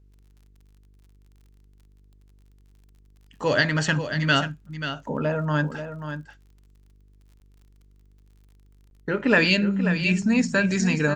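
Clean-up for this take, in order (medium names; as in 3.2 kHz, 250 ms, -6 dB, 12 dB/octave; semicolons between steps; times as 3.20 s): de-click; de-hum 49.6 Hz, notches 9; interpolate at 7.40/8.90 s, 11 ms; inverse comb 536 ms -9.5 dB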